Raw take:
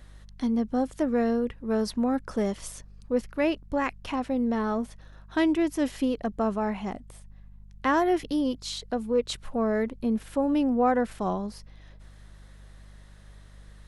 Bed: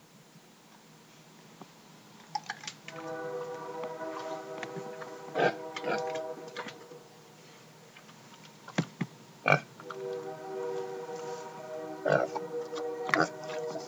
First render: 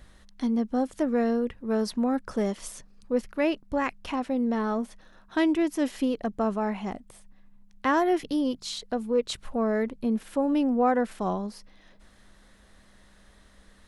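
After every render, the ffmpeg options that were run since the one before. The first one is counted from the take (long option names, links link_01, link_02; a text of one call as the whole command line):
ffmpeg -i in.wav -af "bandreject=frequency=50:width_type=h:width=4,bandreject=frequency=100:width_type=h:width=4,bandreject=frequency=150:width_type=h:width=4" out.wav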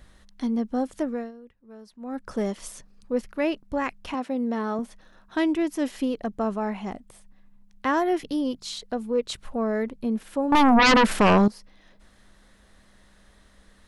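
ffmpeg -i in.wav -filter_complex "[0:a]asettb=1/sr,asplit=3[link_01][link_02][link_03];[link_01]atrim=end=4.144[link_04];[link_02]atrim=start=4.14:end=4.79,asetpts=PTS-STARTPTS,afade=type=in:duration=0.004:curve=qsin,afade=type=out:start_time=0.646:duration=0.004:curve=qsin,highpass=160[link_05];[link_03]atrim=start=4.786[link_06];[link_04][link_05]acrossfade=duration=0.004:curve1=hsin:curve2=qsin[link_07];[link_07][link_06]acrossfade=duration=0.004:curve1=qsin:curve2=hsin,asettb=1/sr,asplit=3[link_08][link_09][link_10];[link_08]atrim=end=10.524[link_11];[link_09]atrim=start=10.52:end=11.48,asetpts=PTS-STARTPTS,afade=type=in:duration=0.004:curve=qsin,afade=type=out:start_time=0.956:duration=0.004:curve=qsin,aeval=exprs='0.224*sin(PI/2*4.47*val(0)/0.224)':channel_layout=same[link_12];[link_10]atrim=start=11.476[link_13];[link_11][link_12]acrossfade=duration=0.004:curve1=hsin:curve2=qsin[link_14];[link_14][link_13]acrossfade=duration=0.004:curve1=qsin:curve2=hsin,asplit=3[link_15][link_16][link_17];[link_15]atrim=end=1.32,asetpts=PTS-STARTPTS,afade=type=out:start_time=0.99:duration=0.33:silence=0.105925[link_18];[link_16]atrim=start=1.32:end=1.99,asetpts=PTS-STARTPTS,volume=-19.5dB[link_19];[link_17]atrim=start=1.99,asetpts=PTS-STARTPTS,afade=type=in:duration=0.33:silence=0.105925[link_20];[link_18][link_19][link_20]concat=n=3:v=0:a=1" out.wav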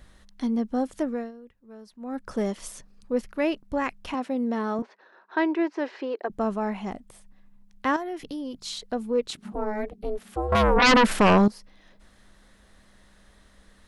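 ffmpeg -i in.wav -filter_complex "[0:a]asettb=1/sr,asplit=3[link_01][link_02][link_03];[link_01]atrim=end=4.824[link_04];[link_02]atrim=start=4.82:end=6.3,asetpts=PTS-STARTPTS,afade=type=in:duration=0.004:curve=qsin,afade=type=out:start_time=1.476:duration=0.004:curve=qsin,highpass=frequency=360:width=0.5412,highpass=frequency=360:width=1.3066,equalizer=frequency=380:width_type=q:width=4:gain=9,equalizer=frequency=930:width_type=q:width=4:gain=6,equalizer=frequency=1600:width_type=q:width=4:gain=5,equalizer=frequency=3300:width_type=q:width=4:gain=-8,lowpass=frequency=4300:width=0.5412,lowpass=frequency=4300:width=1.3066[link_05];[link_03]atrim=start=6.296[link_06];[link_04][link_05]acrossfade=duration=0.004:curve1=hsin:curve2=qsin[link_07];[link_07][link_06]acrossfade=duration=0.004:curve1=qsin:curve2=hsin,asettb=1/sr,asplit=3[link_08][link_09][link_10];[link_08]atrim=end=7.964[link_11];[link_09]atrim=start=7.96:end=8.54,asetpts=PTS-STARTPTS,afade=type=in:duration=0.004:curve=qsin,afade=type=out:start_time=0.576:duration=0.004:curve=qsin,acompressor=threshold=-34dB:ratio=2.5:attack=3.2:release=140:knee=1:detection=peak[link_12];[link_10]atrim=start=8.536[link_13];[link_11][link_12]acrossfade=duration=0.004:curve1=hsin:curve2=qsin[link_14];[link_14][link_13]acrossfade=duration=0.004:curve1=qsin:curve2=hsin,asettb=1/sr,asplit=3[link_15][link_16][link_17];[link_15]atrim=end=9.304[link_18];[link_16]atrim=start=9.3:end=10.82,asetpts=PTS-STARTPTS,afade=type=in:duration=0.004:curve=qsin,afade=type=out:start_time=1.516:duration=0.004:curve=qsin,aeval=exprs='val(0)*sin(2*PI*210*n/s)':channel_layout=same[link_19];[link_17]atrim=start=10.816[link_20];[link_18][link_19]acrossfade=duration=0.004:curve1=hsin:curve2=qsin[link_21];[link_21][link_20]acrossfade=duration=0.004:curve1=qsin:curve2=hsin" out.wav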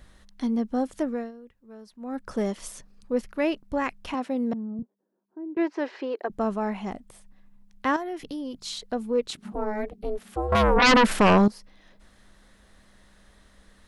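ffmpeg -i in.wav -filter_complex "[0:a]asettb=1/sr,asplit=3[link_01][link_02][link_03];[link_01]atrim=end=4.534[link_04];[link_02]atrim=start=4.53:end=5.57,asetpts=PTS-STARTPTS,afade=type=in:duration=0.004:curve=qsin,afade=type=out:start_time=1.036:duration=0.004:curve=qsin,lowpass=frequency=160:width_type=q:width=1.6[link_05];[link_03]atrim=start=5.566[link_06];[link_04][link_05]acrossfade=duration=0.004:curve1=hsin:curve2=qsin[link_07];[link_07][link_06]acrossfade=duration=0.004:curve1=qsin:curve2=hsin" out.wav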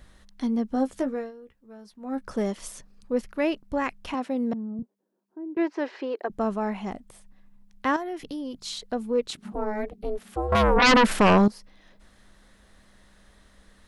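ffmpeg -i in.wav -filter_complex "[0:a]asettb=1/sr,asplit=3[link_01][link_02][link_03];[link_01]atrim=end=0.694[link_04];[link_02]atrim=start=0.69:end=2.27,asetpts=PTS-STARTPTS,afade=type=in:duration=0.004:curve=qsin,afade=type=out:start_time=1.576:duration=0.004:curve=qsin,asplit=2[link_05][link_06];[link_06]adelay=15,volume=-7.5dB[link_07];[link_05][link_07]amix=inputs=2:normalize=0,atrim=end_sample=69678[link_08];[link_03]atrim=start=2.266[link_09];[link_04][link_08]acrossfade=duration=0.004:curve1=hsin:curve2=qsin[link_10];[link_10][link_09]acrossfade=duration=0.004:curve1=qsin:curve2=hsin" out.wav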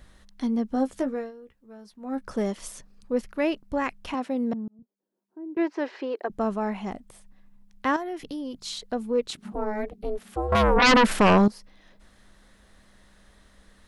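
ffmpeg -i in.wav -filter_complex "[0:a]asplit=2[link_01][link_02];[link_01]atrim=end=4.68,asetpts=PTS-STARTPTS,afade=type=out:start_time=4.676:duration=0.004:curve=hsin[link_03];[link_02]atrim=start=4.68,asetpts=PTS-STARTPTS,afade=type=in:duration=0.92[link_04];[link_03][link_04]concat=n=2:v=0:a=1" out.wav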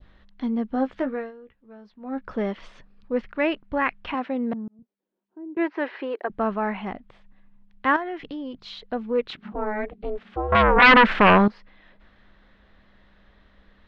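ffmpeg -i in.wav -af "adynamicequalizer=threshold=0.0112:dfrequency=1700:dqfactor=0.74:tfrequency=1700:tqfactor=0.74:attack=5:release=100:ratio=0.375:range=4:mode=boostabove:tftype=bell,lowpass=frequency=3600:width=0.5412,lowpass=frequency=3600:width=1.3066" out.wav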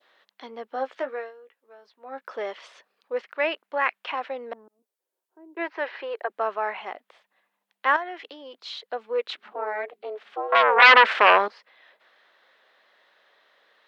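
ffmpeg -i in.wav -af "highpass=frequency=450:width=0.5412,highpass=frequency=450:width=1.3066,aemphasis=mode=production:type=cd" out.wav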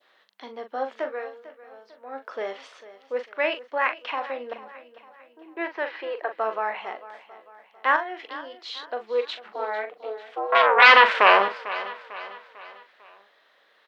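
ffmpeg -i in.wav -filter_complex "[0:a]asplit=2[link_01][link_02];[link_02]adelay=41,volume=-9dB[link_03];[link_01][link_03]amix=inputs=2:normalize=0,aecho=1:1:448|896|1344|1792:0.158|0.0729|0.0335|0.0154" out.wav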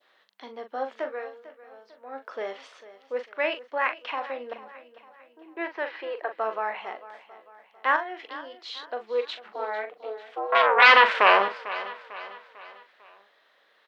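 ffmpeg -i in.wav -af "volume=-2dB" out.wav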